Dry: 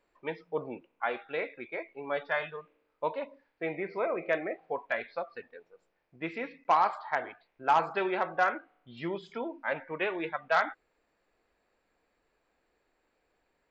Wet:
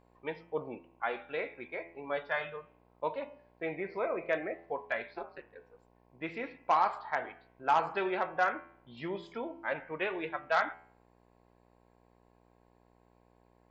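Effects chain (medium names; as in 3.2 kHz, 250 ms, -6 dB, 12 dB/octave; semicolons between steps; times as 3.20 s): de-hum 83.94 Hz, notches 38; 5.13–5.54 s: ring modulator 200 Hz -> 44 Hz; mains buzz 60 Hz, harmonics 18, -64 dBFS -2 dB/octave; trim -2 dB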